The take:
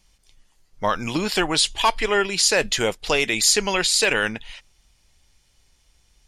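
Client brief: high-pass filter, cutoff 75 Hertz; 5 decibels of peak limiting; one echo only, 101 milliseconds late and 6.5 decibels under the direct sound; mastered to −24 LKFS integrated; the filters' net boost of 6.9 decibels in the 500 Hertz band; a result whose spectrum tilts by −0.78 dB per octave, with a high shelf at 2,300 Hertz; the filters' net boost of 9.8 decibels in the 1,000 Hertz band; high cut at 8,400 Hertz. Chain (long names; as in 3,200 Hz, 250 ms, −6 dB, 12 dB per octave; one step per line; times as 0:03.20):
high-pass filter 75 Hz
low-pass filter 8,400 Hz
parametric band 500 Hz +6 dB
parametric band 1,000 Hz +8.5 dB
high-shelf EQ 2,300 Hz +8 dB
brickwall limiter −3.5 dBFS
single-tap delay 101 ms −6.5 dB
level −10 dB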